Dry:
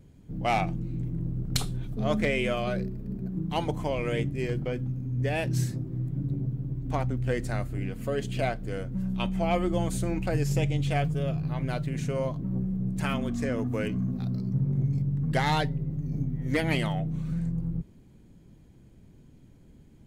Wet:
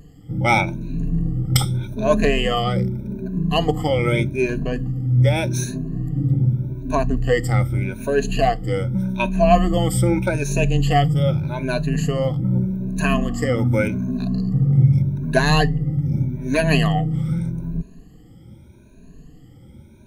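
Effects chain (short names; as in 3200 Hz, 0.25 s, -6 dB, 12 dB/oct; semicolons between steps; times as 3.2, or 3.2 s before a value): moving spectral ripple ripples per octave 1.5, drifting +0.83 Hz, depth 22 dB; gain +5 dB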